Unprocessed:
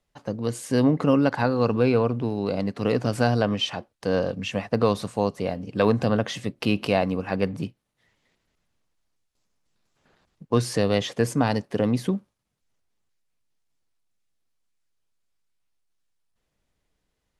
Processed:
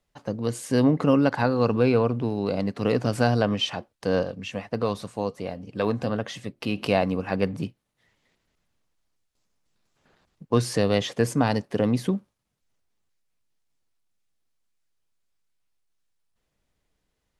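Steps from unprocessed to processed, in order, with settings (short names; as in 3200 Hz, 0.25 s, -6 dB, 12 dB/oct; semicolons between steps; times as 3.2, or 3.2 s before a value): 4.23–6.78 flange 1.4 Hz, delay 0.8 ms, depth 3.5 ms, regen +79%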